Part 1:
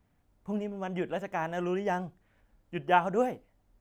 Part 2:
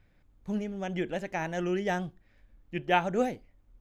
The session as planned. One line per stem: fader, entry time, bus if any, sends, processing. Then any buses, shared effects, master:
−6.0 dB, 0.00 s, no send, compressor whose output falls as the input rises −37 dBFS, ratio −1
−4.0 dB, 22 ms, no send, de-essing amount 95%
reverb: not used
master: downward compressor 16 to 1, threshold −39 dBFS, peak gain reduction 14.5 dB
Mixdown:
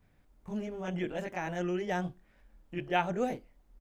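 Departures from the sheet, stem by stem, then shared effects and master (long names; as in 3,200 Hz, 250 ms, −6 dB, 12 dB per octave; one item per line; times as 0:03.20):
stem 2: missing de-essing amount 95%
master: missing downward compressor 16 to 1, threshold −39 dBFS, peak gain reduction 14.5 dB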